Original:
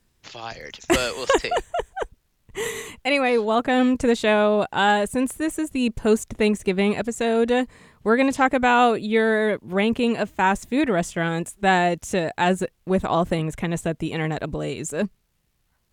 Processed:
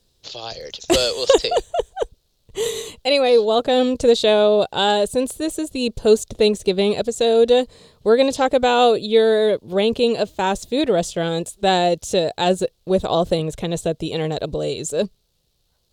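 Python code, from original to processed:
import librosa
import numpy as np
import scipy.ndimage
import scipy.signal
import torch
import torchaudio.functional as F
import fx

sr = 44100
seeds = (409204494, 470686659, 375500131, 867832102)

y = fx.graphic_eq(x, sr, hz=(250, 500, 1000, 2000, 4000), db=(-5, 8, -4, -11, 12))
y = y * 10.0 ** (1.5 / 20.0)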